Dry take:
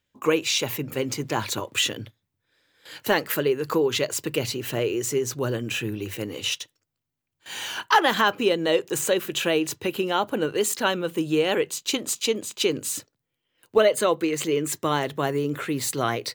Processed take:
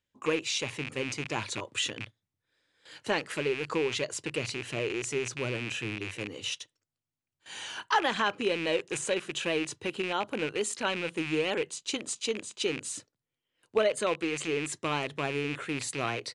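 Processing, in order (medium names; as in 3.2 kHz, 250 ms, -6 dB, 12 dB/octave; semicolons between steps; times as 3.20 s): rattle on loud lows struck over -35 dBFS, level -17 dBFS; resampled via 22.05 kHz; trim -7.5 dB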